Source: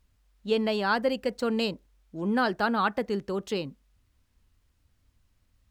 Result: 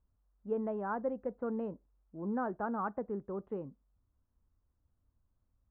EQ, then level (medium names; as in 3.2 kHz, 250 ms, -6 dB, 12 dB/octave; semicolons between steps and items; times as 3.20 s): inverse Chebyshev low-pass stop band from 5.4 kHz, stop band 70 dB; -8.5 dB